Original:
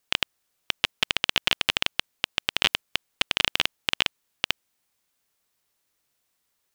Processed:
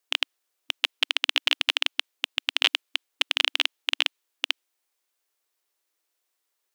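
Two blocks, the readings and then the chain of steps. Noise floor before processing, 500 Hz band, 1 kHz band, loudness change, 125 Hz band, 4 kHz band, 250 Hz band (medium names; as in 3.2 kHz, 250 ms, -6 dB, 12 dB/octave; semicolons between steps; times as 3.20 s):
-76 dBFS, -3.5 dB, -3.0 dB, +0.5 dB, under -40 dB, +1.0 dB, -8.0 dB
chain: dynamic bell 3.1 kHz, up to +5 dB, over -37 dBFS, Q 1.1; brick-wall FIR high-pass 280 Hz; trim -3.5 dB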